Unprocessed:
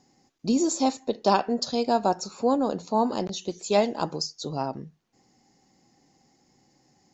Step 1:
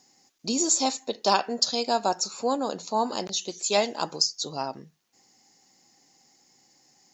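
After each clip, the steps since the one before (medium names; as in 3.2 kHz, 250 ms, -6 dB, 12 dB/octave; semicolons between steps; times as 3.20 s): tilt EQ +3 dB/octave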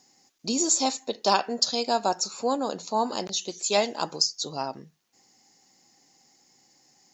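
no audible change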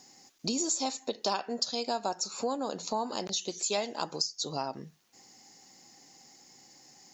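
compression 3:1, threshold -37 dBFS, peak gain reduction 15.5 dB; trim +5 dB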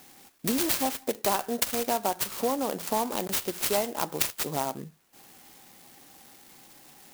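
sampling jitter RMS 0.075 ms; trim +4.5 dB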